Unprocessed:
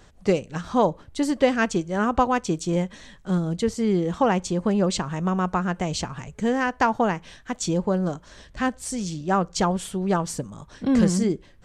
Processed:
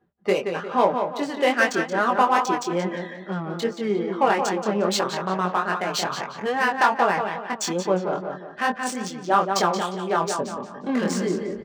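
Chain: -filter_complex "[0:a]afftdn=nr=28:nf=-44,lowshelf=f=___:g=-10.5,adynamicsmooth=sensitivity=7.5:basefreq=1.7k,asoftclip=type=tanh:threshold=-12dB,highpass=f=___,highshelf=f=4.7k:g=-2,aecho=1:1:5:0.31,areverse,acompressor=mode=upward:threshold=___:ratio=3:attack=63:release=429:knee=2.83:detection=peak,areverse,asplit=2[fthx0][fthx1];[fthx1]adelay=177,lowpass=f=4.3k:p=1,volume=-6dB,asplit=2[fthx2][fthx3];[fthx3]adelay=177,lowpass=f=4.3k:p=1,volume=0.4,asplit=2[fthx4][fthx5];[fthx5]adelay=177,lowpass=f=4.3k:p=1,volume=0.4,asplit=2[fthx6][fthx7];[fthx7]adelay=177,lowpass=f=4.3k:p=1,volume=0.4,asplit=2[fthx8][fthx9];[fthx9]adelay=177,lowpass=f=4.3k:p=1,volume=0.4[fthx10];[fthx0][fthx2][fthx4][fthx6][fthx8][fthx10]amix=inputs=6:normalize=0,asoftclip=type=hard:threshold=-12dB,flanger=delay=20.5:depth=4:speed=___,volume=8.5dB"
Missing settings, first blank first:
440, 270, -32dB, 2.4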